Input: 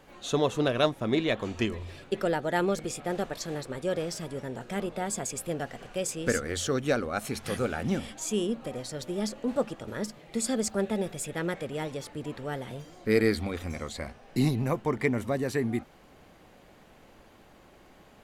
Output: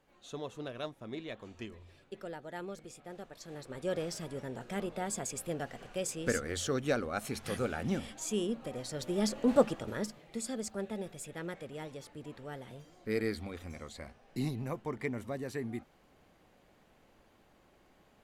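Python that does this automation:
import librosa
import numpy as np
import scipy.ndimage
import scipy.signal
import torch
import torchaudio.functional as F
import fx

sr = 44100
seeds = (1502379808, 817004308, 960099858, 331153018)

y = fx.gain(x, sr, db=fx.line((3.31, -15.5), (3.89, -4.5), (8.72, -4.5), (9.58, 3.5), (10.47, -9.5)))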